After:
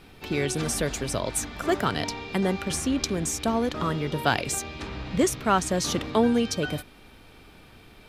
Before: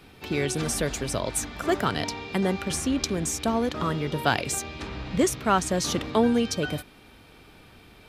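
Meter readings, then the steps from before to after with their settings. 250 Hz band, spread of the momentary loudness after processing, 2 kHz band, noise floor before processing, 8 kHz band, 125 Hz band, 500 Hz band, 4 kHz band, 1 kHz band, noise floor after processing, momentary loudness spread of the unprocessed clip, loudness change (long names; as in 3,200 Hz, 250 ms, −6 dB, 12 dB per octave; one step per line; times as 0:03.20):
0.0 dB, 7 LU, 0.0 dB, −52 dBFS, 0.0 dB, 0.0 dB, 0.0 dB, 0.0 dB, 0.0 dB, −51 dBFS, 7 LU, 0.0 dB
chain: background noise brown −56 dBFS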